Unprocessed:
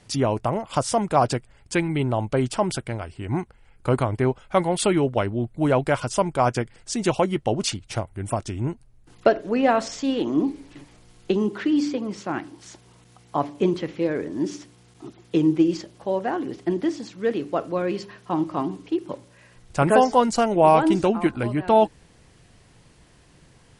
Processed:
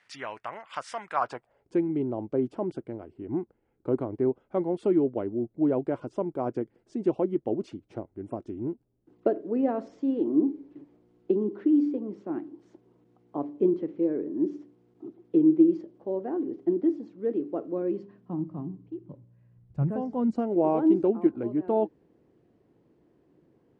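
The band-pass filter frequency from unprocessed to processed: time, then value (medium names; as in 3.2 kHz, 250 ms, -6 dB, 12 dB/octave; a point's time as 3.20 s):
band-pass filter, Q 2.2
1.10 s 1.8 kHz
1.76 s 330 Hz
17.86 s 330 Hz
18.78 s 130 Hz
19.90 s 130 Hz
20.52 s 340 Hz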